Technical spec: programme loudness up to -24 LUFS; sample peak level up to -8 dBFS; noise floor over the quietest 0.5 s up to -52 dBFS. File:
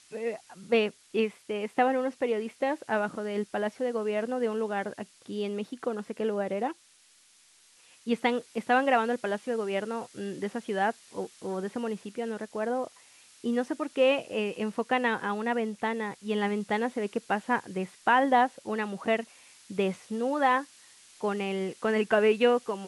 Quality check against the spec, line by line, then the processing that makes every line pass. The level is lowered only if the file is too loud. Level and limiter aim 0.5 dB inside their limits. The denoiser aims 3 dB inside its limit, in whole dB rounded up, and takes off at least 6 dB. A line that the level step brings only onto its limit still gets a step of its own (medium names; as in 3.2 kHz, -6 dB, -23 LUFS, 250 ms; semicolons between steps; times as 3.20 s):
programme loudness -29.5 LUFS: pass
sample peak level -10.5 dBFS: pass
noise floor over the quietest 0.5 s -61 dBFS: pass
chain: none needed